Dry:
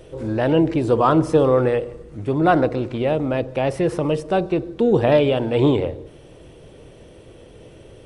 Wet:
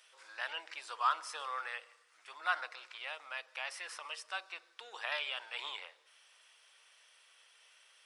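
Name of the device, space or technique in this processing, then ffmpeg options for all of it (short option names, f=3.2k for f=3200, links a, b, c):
headphones lying on a table: -af "highpass=f=1.2k:w=0.5412,highpass=f=1.2k:w=1.3066,equalizer=f=5.1k:t=o:w=0.34:g=5,volume=-7dB"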